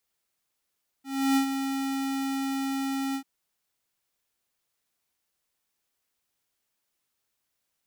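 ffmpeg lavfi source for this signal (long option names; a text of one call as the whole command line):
ffmpeg -f lavfi -i "aevalsrc='0.0841*(2*lt(mod(271*t,1),0.5)-1)':duration=2.191:sample_rate=44100,afade=type=in:duration=0.323,afade=type=out:start_time=0.323:duration=0.093:silence=0.398,afade=type=out:start_time=2.11:duration=0.081" out.wav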